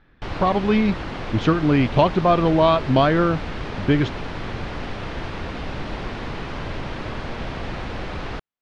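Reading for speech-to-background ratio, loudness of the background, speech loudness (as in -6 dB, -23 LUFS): 11.0 dB, -31.0 LUFS, -20.0 LUFS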